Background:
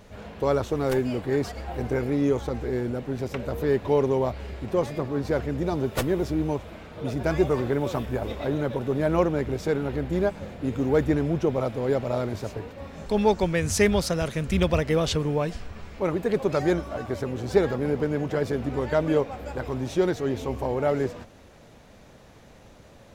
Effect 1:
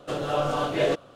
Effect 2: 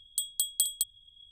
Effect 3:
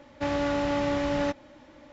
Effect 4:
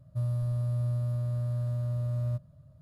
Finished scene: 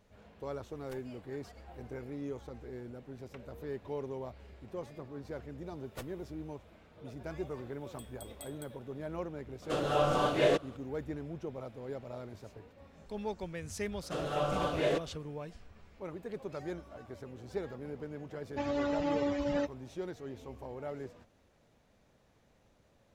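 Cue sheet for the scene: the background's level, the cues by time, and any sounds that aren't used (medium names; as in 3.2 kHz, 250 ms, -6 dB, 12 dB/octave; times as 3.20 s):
background -17 dB
7.81 s: add 2 -17 dB + feedback comb 100 Hz, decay 0.5 s
9.62 s: add 1 -3 dB
14.03 s: add 1 -7 dB
18.35 s: add 3 -2 dB + expander on every frequency bin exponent 3
not used: 4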